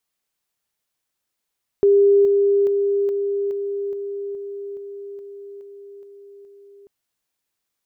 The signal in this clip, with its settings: level ladder 401 Hz -10.5 dBFS, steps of -3 dB, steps 12, 0.42 s 0.00 s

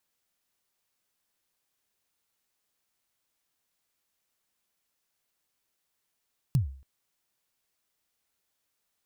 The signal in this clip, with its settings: kick drum length 0.28 s, from 150 Hz, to 67 Hz, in 121 ms, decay 0.46 s, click on, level -17 dB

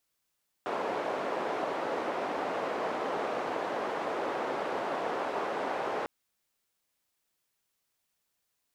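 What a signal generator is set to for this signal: noise band 460–670 Hz, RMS -33 dBFS 5.40 s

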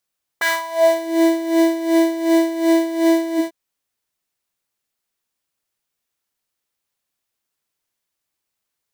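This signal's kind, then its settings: synth patch with tremolo E5, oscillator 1 triangle, oscillator 2 saw, interval +19 st, oscillator 2 level -12 dB, sub -3 dB, noise -15 dB, filter highpass, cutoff 140 Hz, Q 4.5, filter envelope 3.5 oct, filter decay 0.68 s, attack 11 ms, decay 0.19 s, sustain -8 dB, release 0.14 s, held 2.96 s, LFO 2.7 Hz, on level 12.5 dB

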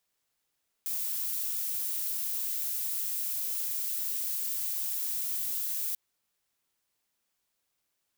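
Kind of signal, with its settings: noise violet, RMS -32.5 dBFS 5.09 s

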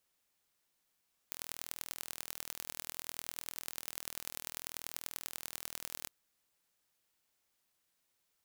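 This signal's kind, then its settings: pulse train 40.6 per s, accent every 4, -11 dBFS 4.77 s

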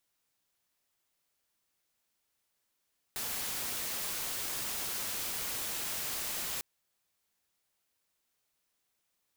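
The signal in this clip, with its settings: noise white, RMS -36.5 dBFS 3.45 s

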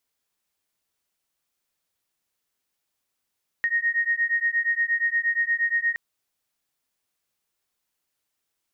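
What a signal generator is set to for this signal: beating tones 1.86 kHz, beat 8.5 Hz, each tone -24 dBFS 2.32 s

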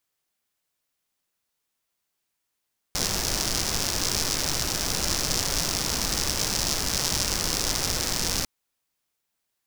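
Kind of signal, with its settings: rain from filtered ticks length 5.50 s, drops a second 150, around 5.4 kHz, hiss -0.5 dB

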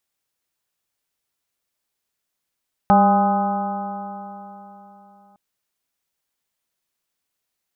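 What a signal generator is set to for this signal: stretched partials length 2.46 s, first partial 197 Hz, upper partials -14/-5.5/3/-11/-7/-19 dB, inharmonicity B 0.0035, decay 3.55 s, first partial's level -14.5 dB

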